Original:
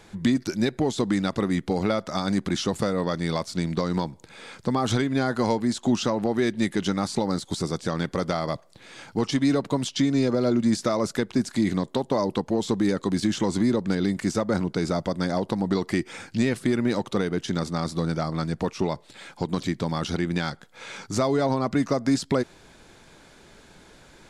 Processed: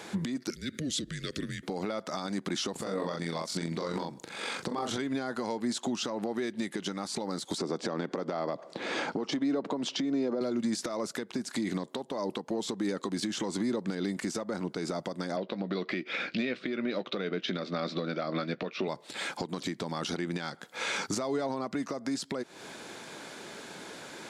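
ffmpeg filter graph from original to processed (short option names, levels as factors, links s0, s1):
-filter_complex "[0:a]asettb=1/sr,asplit=3[s0][s1][s2];[s0]atrim=end=0.504[s3];[s1]atrim=start=0.5:end=1.63,asetpts=PTS-STARTPTS,afade=t=in:d=0.004:c=qsin,afade=t=out:st=1.126:d=0.004:c=qsin,acompressor=threshold=0.0316:ratio=16:attack=3.2:release=140:knee=1:detection=peak,afreqshift=-150,asuperstop=centerf=860:order=4:qfactor=0.7[s4];[s2]atrim=start=1.626[s5];[s3][s4]acrossfade=d=0.004:c1=hsin:c2=qsin[s6];[s6][s5]acrossfade=d=0.004:c1=qsin:c2=hsin,asettb=1/sr,asplit=3[s7][s8][s9];[s7]atrim=end=2.724[s10];[s8]atrim=start=2.72:end=4.98,asetpts=PTS-STARTPTS,afade=t=in:d=0.004:c=qsin,afade=t=out:st=2.256:d=0.004:c=qsin,asplit=2[s11][s12];[s12]adelay=36,volume=0.708[s13];[s11][s13]amix=inputs=2:normalize=0,atrim=end_sample=99666,tremolo=f=46:d=0.4[s14];[s9]atrim=start=4.976[s15];[s10][s14]acrossfade=d=0.004:c1=hsin:c2=qsin[s16];[s16][s15]acrossfade=d=0.004:c1=qsin:c2=hsin,asettb=1/sr,asplit=3[s17][s18][s19];[s17]atrim=end=7.584[s20];[s18]atrim=start=7.58:end=10.41,asetpts=PTS-STARTPTS,afade=t=in:d=0.004:c=qsin,afade=t=out:st=2.826:d=0.004:c=qsin,equalizer=f=380:w=0.3:g=10,acompressor=threshold=0.0316:ratio=2:attack=3.2:release=140:knee=1:detection=peak,highpass=140,lowpass=6100[s21];[s19]atrim=start=10.406[s22];[s20][s21]acrossfade=d=0.004:c1=hsin:c2=qsin[s23];[s23][s22]acrossfade=d=0.004:c1=qsin:c2=hsin,asettb=1/sr,asplit=3[s24][s25][s26];[s24]atrim=end=15.364[s27];[s25]atrim=start=15.36:end=18.88,asetpts=PTS-STARTPTS,afade=t=in:d=0.004:c=qsin,afade=t=out:st=3.516:d=0.004:c=qsin,highpass=170,equalizer=f=180:t=q:w=4:g=3,equalizer=f=590:t=q:w=4:g=6,equalizer=f=890:t=q:w=4:g=-9,equalizer=f=1400:t=q:w=4:g=3,equalizer=f=2400:t=q:w=4:g=7,equalizer=f=3700:t=q:w=4:g=5,lowpass=f=4400:w=0.5412,lowpass=f=4400:w=1.3066,asplit=2[s28][s29];[s29]adelay=16,volume=0.211[s30];[s28][s30]amix=inputs=2:normalize=0,atrim=end_sample=155232[s31];[s26]atrim=start=18.876[s32];[s27][s31]acrossfade=d=0.004:c1=hsin:c2=qsin[s33];[s33][s32]acrossfade=d=0.004:c1=qsin:c2=hsin,highpass=220,acompressor=threshold=0.0251:ratio=6,alimiter=level_in=2:limit=0.0631:level=0:latency=1:release=290,volume=0.501,volume=2.51"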